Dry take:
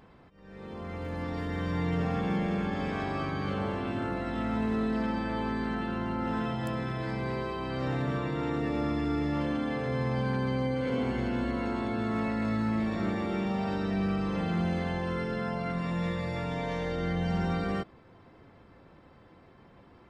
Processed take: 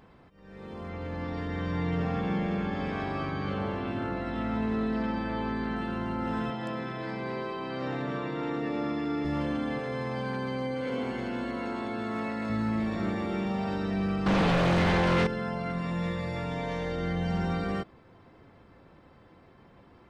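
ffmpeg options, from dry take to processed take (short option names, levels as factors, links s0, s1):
-filter_complex "[0:a]asettb=1/sr,asplit=3[s0][s1][s2];[s0]atrim=end=0.894[s3];[s1]atrim=start=0.89:end=5.76,asetpts=PTS-STARTPTS,afade=t=in:d=0.004:c=qsin,afade=t=out:st=4.866:d=0.004:c=qsin,lowpass=5600[s4];[s2]atrim=start=5.756[s5];[s3][s4]acrossfade=d=0.004:c1=hsin:c2=qsin[s6];[s6][s5]acrossfade=d=0.004:c1=qsin:c2=hsin,asettb=1/sr,asplit=3[s7][s8][s9];[s7]atrim=end=6.504[s10];[s8]atrim=start=6.5:end=9.25,asetpts=PTS-STARTPTS,afade=t=in:d=0.004:c=qsin,afade=t=out:st=2.746:d=0.004:c=qsin,highpass=180,lowpass=5800[s11];[s9]atrim=start=9.246[s12];[s10][s11]acrossfade=d=0.004:c1=hsin:c2=qsin[s13];[s13][s12]acrossfade=d=0.004:c1=qsin:c2=hsin,asettb=1/sr,asplit=3[s14][s15][s16];[s14]atrim=end=9.794[s17];[s15]atrim=start=9.79:end=12.5,asetpts=PTS-STARTPTS,afade=t=in:d=0.004:c=qsin,afade=t=out:st=2.706:d=0.004:c=qsin,highpass=f=250:p=1[s18];[s16]atrim=start=12.496[s19];[s17][s18]acrossfade=d=0.004:c1=hsin:c2=qsin[s20];[s20][s19]acrossfade=d=0.004:c1=qsin:c2=hsin,asettb=1/sr,asplit=3[s21][s22][s23];[s21]atrim=end=14.264[s24];[s22]atrim=start=14.26:end=15.27,asetpts=PTS-STARTPTS,afade=t=in:d=0.004:c=qsin,afade=t=out:st=1.006:d=0.004:c=qsin,aeval=exprs='0.0944*sin(PI/2*2.82*val(0)/0.0944)':c=same[s25];[s23]atrim=start=15.266[s26];[s24][s25]acrossfade=d=0.004:c1=hsin:c2=qsin[s27];[s27][s26]acrossfade=d=0.004:c1=qsin:c2=hsin"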